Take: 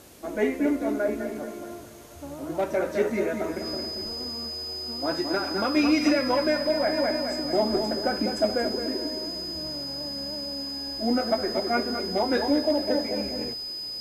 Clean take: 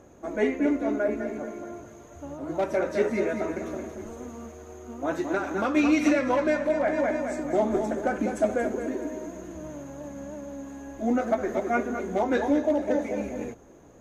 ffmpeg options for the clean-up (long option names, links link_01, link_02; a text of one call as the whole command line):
ffmpeg -i in.wav -af "bandreject=frequency=5000:width=30,afwtdn=0.0025" out.wav